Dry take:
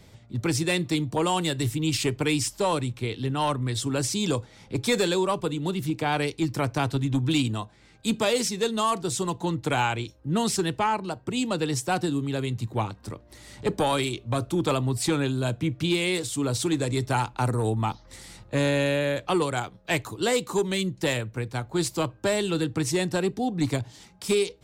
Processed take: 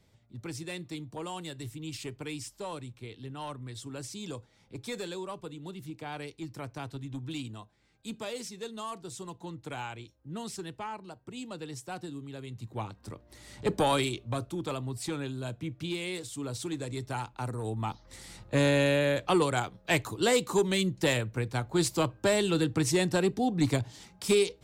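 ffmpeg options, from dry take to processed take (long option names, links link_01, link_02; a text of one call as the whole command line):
ffmpeg -i in.wav -af "volume=7.5dB,afade=type=in:start_time=12.44:duration=1.48:silence=0.237137,afade=type=out:start_time=13.92:duration=0.64:silence=0.375837,afade=type=in:start_time=17.61:duration=0.93:silence=0.354813" out.wav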